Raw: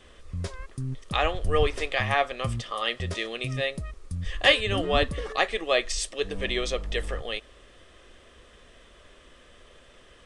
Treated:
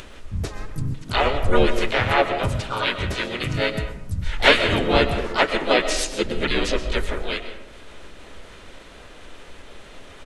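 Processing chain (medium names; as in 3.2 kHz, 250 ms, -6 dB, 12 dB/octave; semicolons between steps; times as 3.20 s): upward compressor, threshold -41 dBFS; harmony voices -12 st -6 dB, -4 st -1 dB, +3 st -3 dB; on a send: reverberation RT60 0.85 s, pre-delay 85 ms, DRR 9 dB; on the sum: trim +1 dB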